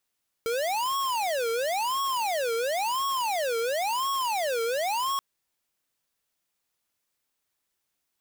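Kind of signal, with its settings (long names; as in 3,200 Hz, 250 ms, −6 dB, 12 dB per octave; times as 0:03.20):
siren wail 455–1,100 Hz 0.96 per second square −27.5 dBFS 4.73 s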